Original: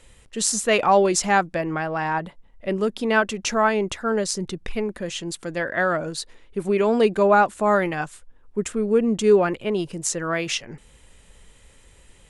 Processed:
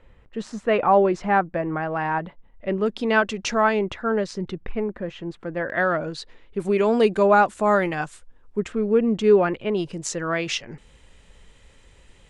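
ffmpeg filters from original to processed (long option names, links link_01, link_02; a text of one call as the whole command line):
ffmpeg -i in.wav -af "asetnsamples=nb_out_samples=441:pad=0,asendcmd='1.83 lowpass f 2700;2.86 lowpass f 5600;3.79 lowpass f 2900;4.64 lowpass f 1700;5.7 lowpass f 4100;6.6 lowpass f 9000;8.6 lowpass f 3600;9.77 lowpass f 6000',lowpass=1700" out.wav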